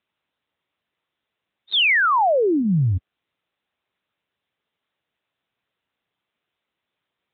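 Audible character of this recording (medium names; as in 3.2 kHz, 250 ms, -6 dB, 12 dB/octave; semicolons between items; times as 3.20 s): AMR-NB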